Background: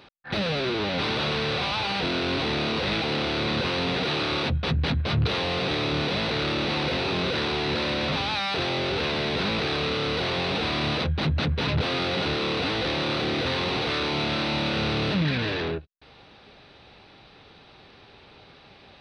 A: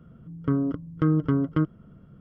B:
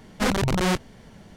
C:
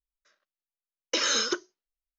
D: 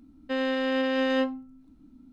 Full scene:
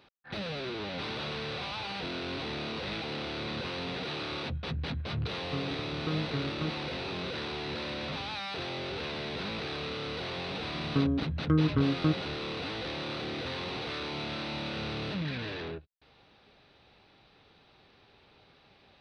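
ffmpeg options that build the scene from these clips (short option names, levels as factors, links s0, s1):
-filter_complex "[1:a]asplit=2[s0][s1];[0:a]volume=0.316[s2];[s0]equalizer=f=270:w=1.5:g=-4.5,atrim=end=2.2,asetpts=PTS-STARTPTS,volume=0.335,afade=t=in:d=0.004:c=hsin,afade=t=out:st=2.196:d=0.004:c=hsin,adelay=222705S[s3];[s1]atrim=end=2.2,asetpts=PTS-STARTPTS,volume=0.668,afade=t=in:d=0.004:c=hsin,afade=t=out:st=2.196:d=0.004:c=hsin,adelay=10480[s4];[s2][s3][s4]amix=inputs=3:normalize=0"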